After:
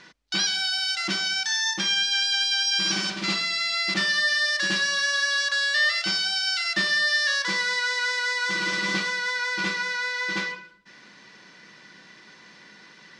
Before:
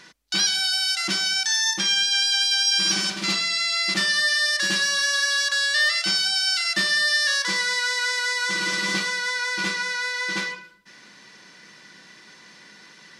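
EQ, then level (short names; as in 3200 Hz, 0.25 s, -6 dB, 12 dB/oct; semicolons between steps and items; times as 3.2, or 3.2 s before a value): air absorption 84 m; 0.0 dB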